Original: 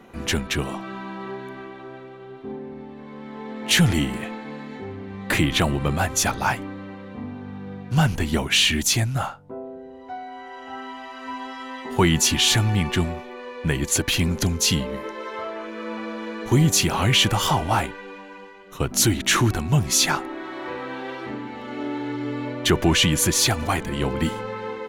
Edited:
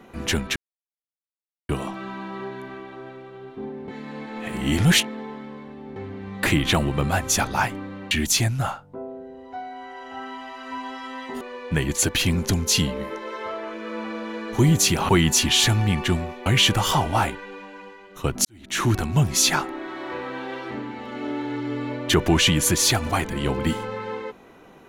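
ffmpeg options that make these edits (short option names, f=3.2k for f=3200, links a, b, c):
-filter_complex "[0:a]asplit=9[a][b][c][d][e][f][g][h][i];[a]atrim=end=0.56,asetpts=PTS-STARTPTS,afade=t=out:st=0.556:d=0.004:c=hsin,apad=pad_dur=1.13[j];[b]atrim=start=0.56:end=2.752,asetpts=PTS-STARTPTS,afade=t=in:d=0.004:c=hsin[k];[c]atrim=start=2.748:end=4.832,asetpts=PTS-STARTPTS,areverse[l];[d]atrim=start=4.828:end=6.982[m];[e]atrim=start=8.668:end=11.972[n];[f]atrim=start=13.338:end=17.022[o];[g]atrim=start=11.968:end=13.342[p];[h]atrim=start=17.018:end=19.01,asetpts=PTS-STARTPTS,afade=t=out:st=1.988:d=0.004:c=hsin[q];[i]atrim=start=19.01,asetpts=PTS-STARTPTS,afade=t=in:d=0.46:c=qua[r];[j][k]concat=n=2:v=0:a=1[s];[s][l]acrossfade=d=0.004:c1=hsin:c2=hsin[t];[t][m]acrossfade=d=0.004:c1=hsin:c2=hsin[u];[u][n]acrossfade=d=0.004:c1=hsin:c2=hsin[v];[v][o]acrossfade=d=0.004:c1=hsin:c2=hsin[w];[w][p]acrossfade=d=0.004:c1=hsin:c2=hsin[x];[q][r]concat=n=2:v=0:a=1[y];[x][y]acrossfade=d=0.004:c1=hsin:c2=hsin"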